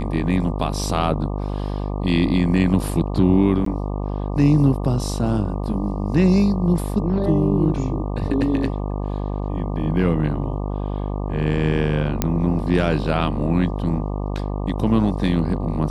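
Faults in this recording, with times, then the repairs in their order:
mains buzz 50 Hz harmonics 24 −25 dBFS
0:03.65–0:03.66: drop-out 13 ms
0:12.22: click −4 dBFS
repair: click removal
hum removal 50 Hz, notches 24
repair the gap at 0:03.65, 13 ms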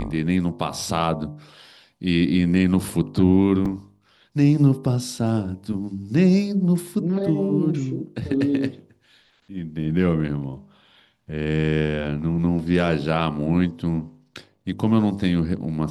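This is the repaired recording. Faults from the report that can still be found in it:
none of them is left

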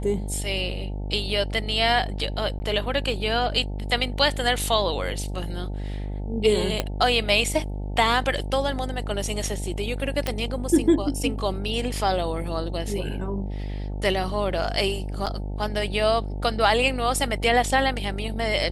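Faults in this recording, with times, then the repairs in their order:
mains buzz 50 Hz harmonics 18 −30 dBFS
0:02.59–0:02.60: drop-out 10 ms
0:06.80: click −8 dBFS
0:10.27: click −10 dBFS
0:15.26–0:15.27: drop-out 7 ms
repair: click removal
hum removal 50 Hz, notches 18
repair the gap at 0:02.59, 10 ms
repair the gap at 0:15.26, 7 ms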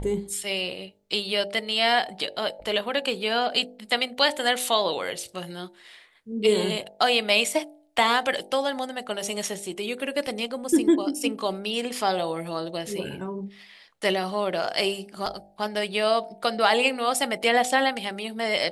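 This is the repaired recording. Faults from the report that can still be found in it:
0:06.80: click

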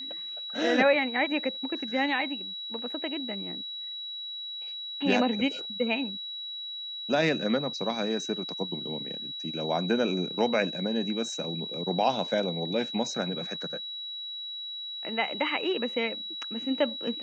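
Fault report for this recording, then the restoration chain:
whistle 3,900 Hz −35 dBFS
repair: notch filter 3,900 Hz, Q 30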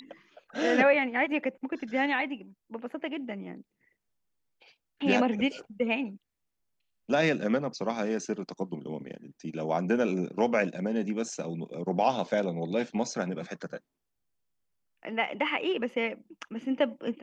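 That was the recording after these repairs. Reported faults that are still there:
none of them is left

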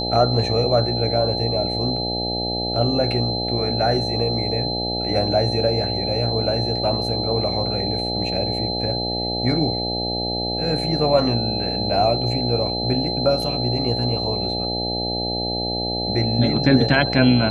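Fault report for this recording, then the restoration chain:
mains buzz 60 Hz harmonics 14 −27 dBFS
whistle 4,100 Hz −25 dBFS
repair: hum removal 60 Hz, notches 14
notch filter 4,100 Hz, Q 30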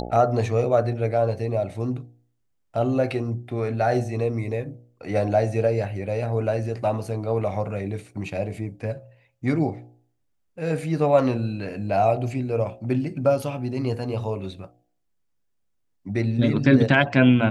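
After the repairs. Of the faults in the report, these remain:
none of them is left

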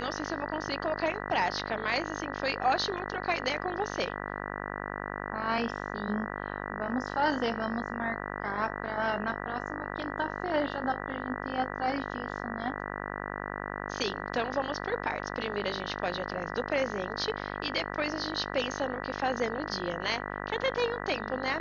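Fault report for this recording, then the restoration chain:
mains buzz 50 Hz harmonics 39 −37 dBFS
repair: hum removal 50 Hz, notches 39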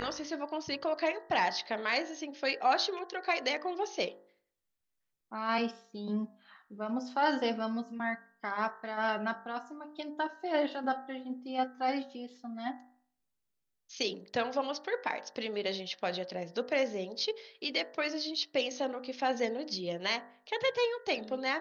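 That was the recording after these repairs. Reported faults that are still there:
none of them is left

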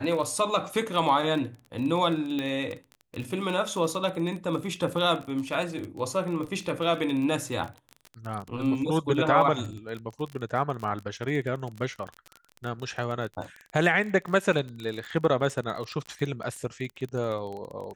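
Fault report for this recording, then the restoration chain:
surface crackle 27 per second −32 dBFS
0:02.39: click −18 dBFS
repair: click removal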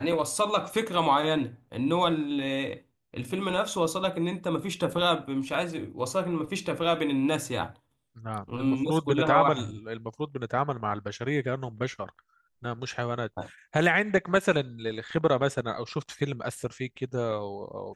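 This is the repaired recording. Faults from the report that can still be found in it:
none of them is left

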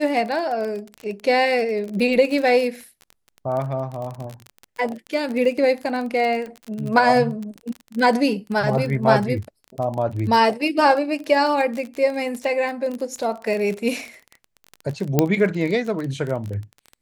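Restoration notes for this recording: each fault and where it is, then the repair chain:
surface crackle 29 per second −26 dBFS
0:15.19: click −2 dBFS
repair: click removal

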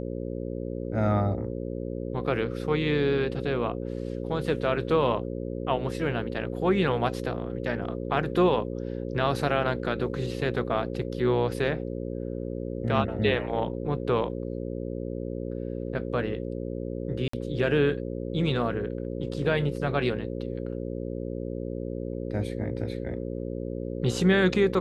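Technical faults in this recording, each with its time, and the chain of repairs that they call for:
mains buzz 60 Hz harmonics 9 −33 dBFS
0:17.28–0:17.33: drop-out 54 ms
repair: hum removal 60 Hz, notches 9
repair the gap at 0:17.28, 54 ms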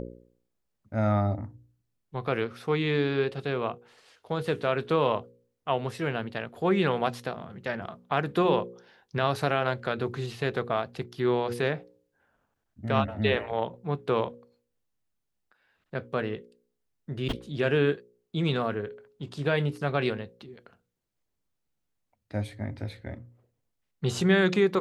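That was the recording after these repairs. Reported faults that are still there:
none of them is left

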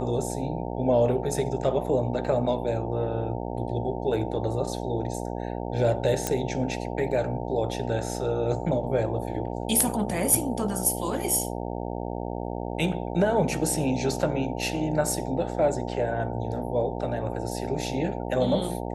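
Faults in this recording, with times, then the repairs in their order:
mains buzz 60 Hz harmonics 15 −32 dBFS
0:06.27: click −9 dBFS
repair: click removal
hum removal 60 Hz, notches 15

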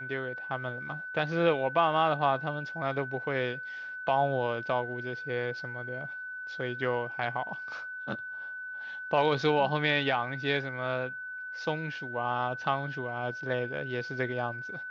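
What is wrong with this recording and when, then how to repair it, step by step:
whistle 1,500 Hz −37 dBFS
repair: notch filter 1,500 Hz, Q 30

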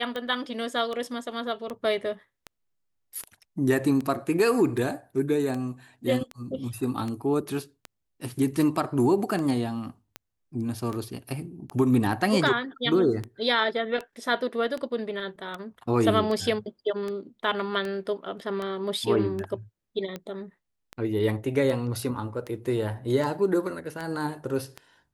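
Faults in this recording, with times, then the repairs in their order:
scratch tick 78 rpm −20 dBFS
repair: click removal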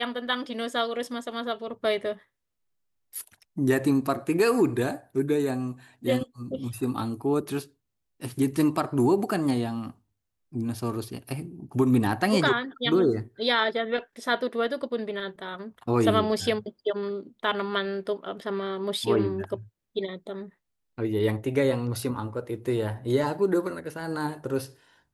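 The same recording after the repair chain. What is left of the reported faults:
none of them is left

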